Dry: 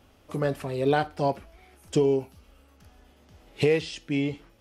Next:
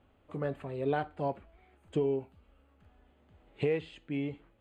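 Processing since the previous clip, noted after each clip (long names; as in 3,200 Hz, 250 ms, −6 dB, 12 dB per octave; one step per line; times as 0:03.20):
moving average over 8 samples
level −7.5 dB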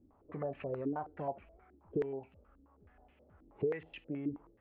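downward compressor 6 to 1, threshold −35 dBFS, peak gain reduction 9.5 dB
low-pass on a step sequencer 9.4 Hz 300–2,500 Hz
level −3 dB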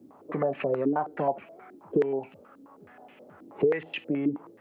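Bessel high-pass filter 200 Hz, order 8
in parallel at +3 dB: downward compressor, threshold −43 dBFS, peak gain reduction 13 dB
on the sum: level +8 dB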